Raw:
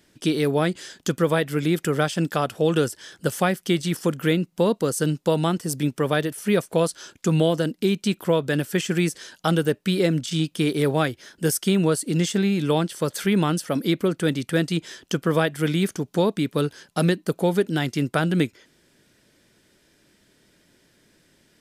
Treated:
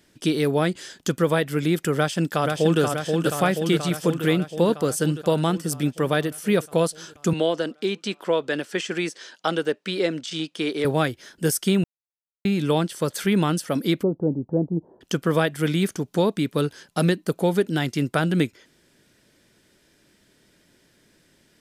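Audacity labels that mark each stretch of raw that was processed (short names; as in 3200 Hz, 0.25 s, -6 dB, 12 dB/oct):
1.960000	2.810000	echo throw 0.48 s, feedback 70%, level -4 dB
7.330000	10.850000	BPF 330–6100 Hz
11.840000	12.450000	mute
14.030000	15.010000	elliptic low-pass 890 Hz, stop band 60 dB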